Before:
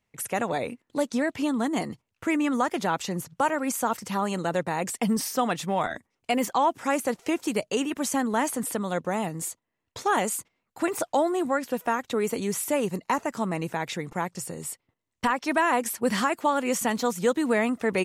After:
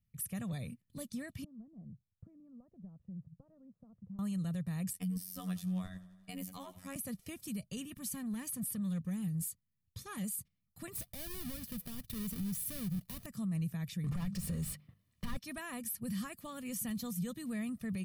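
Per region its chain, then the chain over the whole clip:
0:01.44–0:04.19: downward compressor 3 to 1, threshold −36 dBFS + transistor ladder low-pass 820 Hz, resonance 25%
0:04.93–0:06.96: phases set to zero 91.7 Hz + feedback echo with a swinging delay time 86 ms, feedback 66%, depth 52 cents, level −18 dB
0:07.96–0:10.24: Butterworth band-reject 670 Hz, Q 4.1 + saturating transformer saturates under 870 Hz
0:10.95–0:13.26: each half-wave held at its own peak + downward compressor 3 to 1, threshold −26 dBFS
0:14.04–0:15.37: mains-hum notches 50/100/150/200 Hz + mid-hump overdrive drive 35 dB, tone 1,200 Hz, clips at −12 dBFS
whole clip: drawn EQ curve 190 Hz 0 dB, 430 Hz −26 dB, 790 Hz −28 dB, 4,700 Hz −13 dB, 7,100 Hz −17 dB, 11,000 Hz −3 dB; brickwall limiter −31 dBFS; comb filter 1.7 ms, depth 49%; level +1 dB

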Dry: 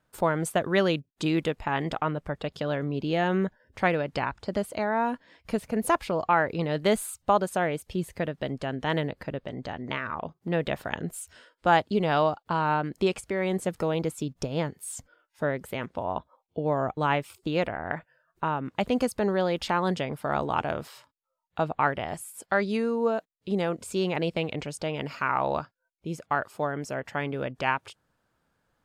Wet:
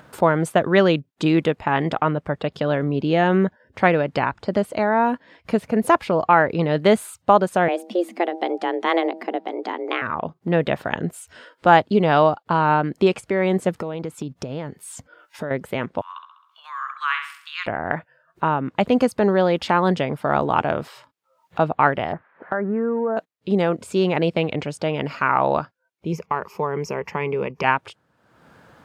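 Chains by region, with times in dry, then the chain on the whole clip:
0:07.68–0:10.02: hum removal 155.2 Hz, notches 5 + frequency shifter +170 Hz
0:13.79–0:15.51: downward compressor 5 to 1, threshold −32 dBFS + one half of a high-frequency compander encoder only
0:16.01–0:17.66: Chebyshev high-pass filter 1,100 Hz, order 6 + flutter between parallel walls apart 11.4 metres, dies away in 0.55 s
0:22.12–0:23.17: spike at every zero crossing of −26.5 dBFS + elliptic low-pass filter 1,700 Hz, stop band 80 dB + downward compressor, threshold −26 dBFS
0:26.12–0:27.64: EQ curve with evenly spaced ripples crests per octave 0.8, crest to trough 13 dB + downward compressor 2 to 1, threshold −29 dBFS
whole clip: high-pass filter 98 Hz; high-shelf EQ 4,700 Hz −11 dB; upward compression, threshold −43 dBFS; level +8 dB

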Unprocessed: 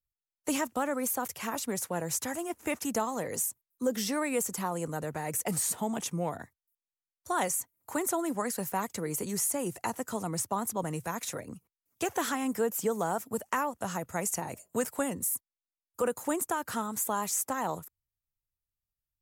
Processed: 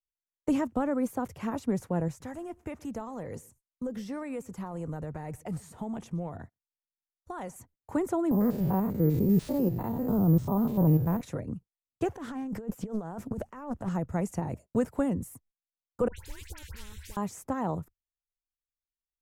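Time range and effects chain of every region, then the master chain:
0:02.08–0:07.56: parametric band 220 Hz −5.5 dB 2.7 octaves + downward compressor 2 to 1, threshold −38 dBFS + single-tap delay 122 ms −24 dB
0:08.31–0:11.21: spectrum averaged block by block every 100 ms + tilt shelving filter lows +7 dB, about 1,400 Hz + bad sample-rate conversion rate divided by 3×, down none, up zero stuff
0:12.16–0:13.89: compressor whose output falls as the input rises −39 dBFS + highs frequency-modulated by the lows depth 0.42 ms
0:16.08–0:17.17: inverse Chebyshev band-stop filter 130–1,300 Hz + all-pass dispersion highs, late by 89 ms, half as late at 1,600 Hz + every bin compressed towards the loudest bin 4 to 1
whole clip: noise gate −49 dBFS, range −28 dB; spectral tilt −4.5 dB per octave; level −2.5 dB

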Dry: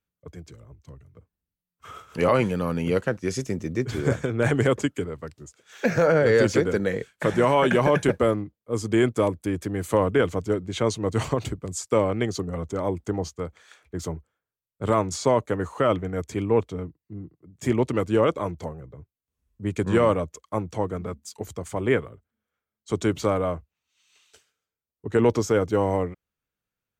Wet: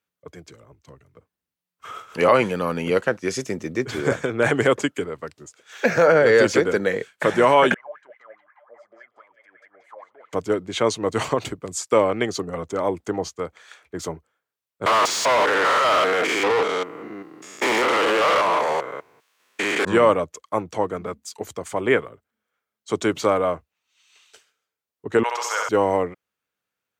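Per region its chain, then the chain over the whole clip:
0:07.74–0:10.33: downward compressor 3 to 1, threshold −34 dBFS + LFO wah 4.8 Hz 580–2,100 Hz, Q 14 + echo through a band-pass that steps 181 ms, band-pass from 4,700 Hz, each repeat −0.7 octaves, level −1.5 dB
0:14.86–0:19.85: spectrum averaged block by block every 200 ms + high-pass filter 1,200 Hz 6 dB per octave + mid-hump overdrive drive 35 dB, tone 2,900 Hz, clips at −16 dBFS
0:25.23–0:25.69: high-pass filter 800 Hz 24 dB per octave + flutter between parallel walls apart 11.5 metres, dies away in 1.2 s
whole clip: high-pass filter 500 Hz 6 dB per octave; high-shelf EQ 5,100 Hz −5 dB; level +7 dB

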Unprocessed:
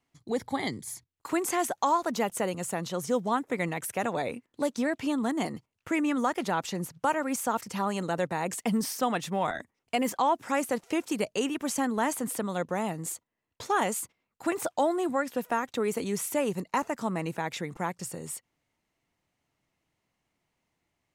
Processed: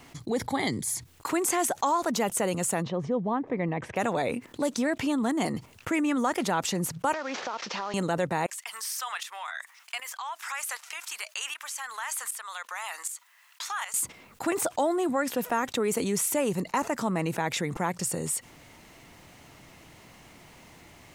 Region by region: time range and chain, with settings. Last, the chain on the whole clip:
0:02.82–0:03.96: head-to-tape spacing loss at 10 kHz 42 dB + notch filter 1,400 Hz, Q 6.8
0:07.13–0:07.94: variable-slope delta modulation 32 kbit/s + high-pass filter 460 Hz + downward compressor, threshold −38 dBFS
0:08.46–0:13.94: high-pass filter 1,100 Hz 24 dB per octave + downward compressor 2 to 1, threshold −42 dBFS + shaped tremolo saw up 1.3 Hz, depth 80%
whole clip: dynamic equaliser 8,400 Hz, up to +4 dB, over −48 dBFS, Q 1.2; envelope flattener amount 50%; level −1.5 dB

